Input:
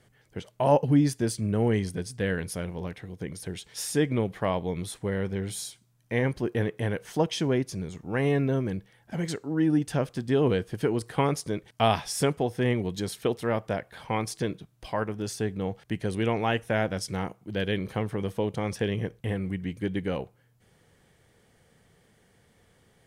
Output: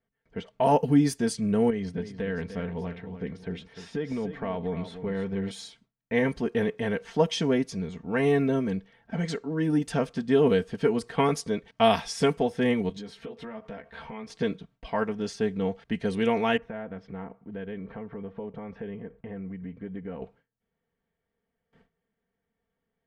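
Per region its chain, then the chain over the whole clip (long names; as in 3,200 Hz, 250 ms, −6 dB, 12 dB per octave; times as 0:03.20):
0:01.70–0:05.51: downward compressor 10 to 1, threshold −27 dBFS + low-pass filter 2,700 Hz 6 dB per octave + single-tap delay 299 ms −11 dB
0:12.89–0:14.30: double-tracking delay 14 ms −3 dB + downward compressor 10 to 1, threshold −37 dBFS
0:16.57–0:20.22: low-pass filter 1,700 Hz + downward compressor 3 to 1, threshold −38 dBFS
whole clip: noise gate with hold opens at −50 dBFS; low-pass that shuts in the quiet parts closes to 2,500 Hz, open at −19.5 dBFS; comb filter 4.4 ms, depth 68%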